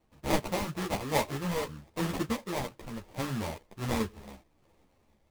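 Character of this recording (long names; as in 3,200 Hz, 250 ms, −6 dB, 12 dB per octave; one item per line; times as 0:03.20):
a quantiser's noise floor 12 bits, dither triangular
sample-and-hold tremolo
aliases and images of a low sample rate 1,500 Hz, jitter 20%
a shimmering, thickened sound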